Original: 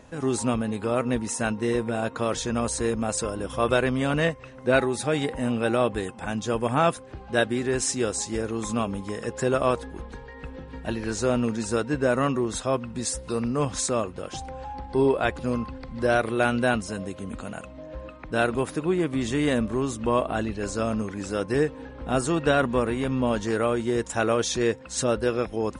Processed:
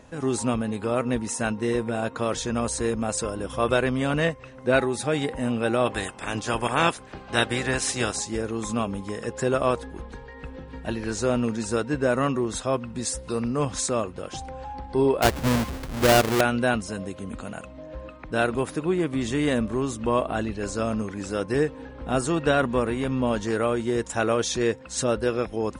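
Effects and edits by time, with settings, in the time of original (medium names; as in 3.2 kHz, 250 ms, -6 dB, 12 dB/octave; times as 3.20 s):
5.85–8.19 s: spectral peaks clipped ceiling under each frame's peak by 16 dB
15.22–16.41 s: square wave that keeps the level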